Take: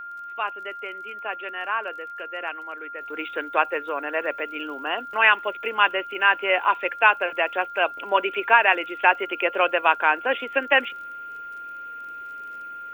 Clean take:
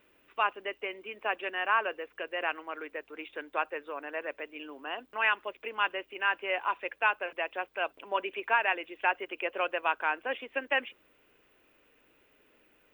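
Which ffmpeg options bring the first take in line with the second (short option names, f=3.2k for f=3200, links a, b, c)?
-af "adeclick=t=4,bandreject=f=1.4k:w=30,asetnsamples=n=441:p=0,asendcmd='3.01 volume volume -10dB',volume=0dB"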